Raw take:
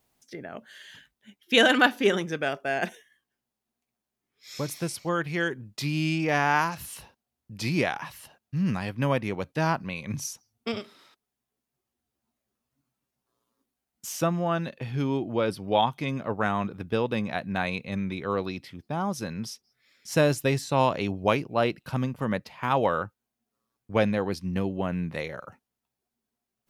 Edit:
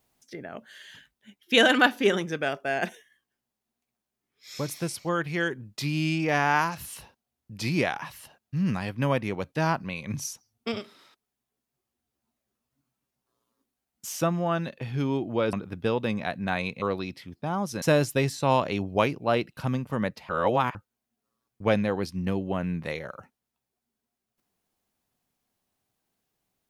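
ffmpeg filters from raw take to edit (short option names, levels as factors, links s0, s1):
-filter_complex "[0:a]asplit=6[s0][s1][s2][s3][s4][s5];[s0]atrim=end=15.532[s6];[s1]atrim=start=16.608:end=17.902[s7];[s2]atrim=start=18.288:end=19.292[s8];[s3]atrim=start=20.108:end=22.582[s9];[s4]atrim=start=22.578:end=23.042,asetpts=PTS-STARTPTS,areverse[s10];[s5]atrim=start=23.038[s11];[s6][s7]acrossfade=d=0.004:c1=hsin:c2=hsin[s12];[s12][s8]acrossfade=d=0.004:c1=hsin:c2=hsin[s13];[s13][s9]acrossfade=d=0.004:c1=hsin:c2=hsin[s14];[s14][s10]acrossfade=d=0.004:c1=hsin:c2=hsin[s15];[s15][s11]acrossfade=d=0.004:c1=hsin:c2=hsin"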